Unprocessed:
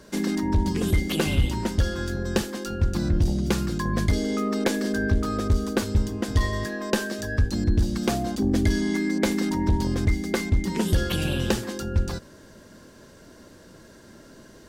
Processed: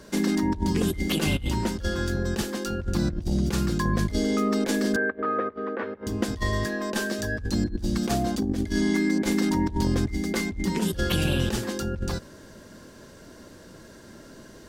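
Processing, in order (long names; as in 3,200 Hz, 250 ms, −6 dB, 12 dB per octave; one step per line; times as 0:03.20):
compressor whose output falls as the input rises −24 dBFS, ratio −0.5
0:04.96–0:06.07: loudspeaker in its box 370–2,200 Hz, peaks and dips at 490 Hz +6 dB, 1,200 Hz +4 dB, 1,800 Hz +6 dB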